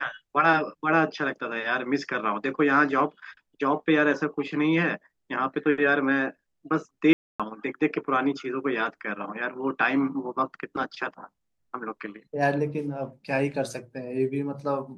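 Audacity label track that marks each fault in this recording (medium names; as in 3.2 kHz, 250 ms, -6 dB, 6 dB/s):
7.130000	7.400000	dropout 266 ms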